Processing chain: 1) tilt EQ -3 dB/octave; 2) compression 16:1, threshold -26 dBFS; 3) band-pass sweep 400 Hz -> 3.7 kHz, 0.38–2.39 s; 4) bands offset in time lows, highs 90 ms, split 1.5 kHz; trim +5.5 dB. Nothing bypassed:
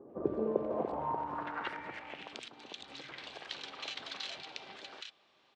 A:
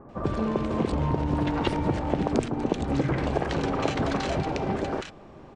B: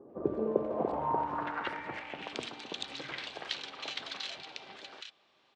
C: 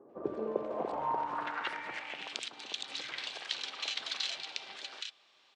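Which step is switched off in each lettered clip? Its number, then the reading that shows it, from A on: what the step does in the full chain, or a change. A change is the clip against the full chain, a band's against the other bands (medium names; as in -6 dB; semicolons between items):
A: 3, 125 Hz band +15.5 dB; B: 2, mean gain reduction 3.5 dB; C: 1, 125 Hz band -9.5 dB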